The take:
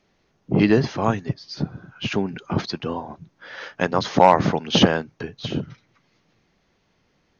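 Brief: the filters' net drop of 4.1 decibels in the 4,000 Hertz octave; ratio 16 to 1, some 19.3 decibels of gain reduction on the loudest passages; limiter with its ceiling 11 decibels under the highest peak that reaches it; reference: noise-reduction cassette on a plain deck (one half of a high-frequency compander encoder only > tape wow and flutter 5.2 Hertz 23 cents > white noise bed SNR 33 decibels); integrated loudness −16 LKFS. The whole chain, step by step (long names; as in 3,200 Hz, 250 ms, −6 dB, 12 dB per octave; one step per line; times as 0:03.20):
parametric band 4,000 Hz −6 dB
downward compressor 16 to 1, threshold −27 dBFS
brickwall limiter −22.5 dBFS
one half of a high-frequency compander encoder only
tape wow and flutter 5.2 Hz 23 cents
white noise bed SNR 33 dB
level +20.5 dB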